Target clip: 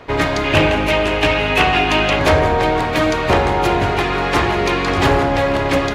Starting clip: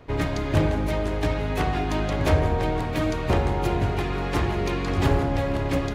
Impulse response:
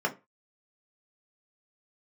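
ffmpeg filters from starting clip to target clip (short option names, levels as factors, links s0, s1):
-filter_complex "[0:a]asplit=2[s0][s1];[s1]highpass=f=720:p=1,volume=3.98,asoftclip=type=tanh:threshold=0.355[s2];[s0][s2]amix=inputs=2:normalize=0,lowpass=f=5100:p=1,volume=0.501,asettb=1/sr,asplit=3[s3][s4][s5];[s3]atrim=end=0.444[s6];[s4]atrim=start=0.44:end=2.19,asetpts=PTS-STARTPTS,afade=t=in:d=0.004:c=qsin,afade=t=out:st=1.746:d=0.004:c=qsin,equalizer=f=2700:w=3.3:g=11[s7];[s5]atrim=start=2.186[s8];[s6][s7]acrossfade=d=0.004:c1=hsin:c2=qsin[s9];[s9][s8]acrossfade=d=0.004:c1=qsin:c2=hsin,volume=2.24"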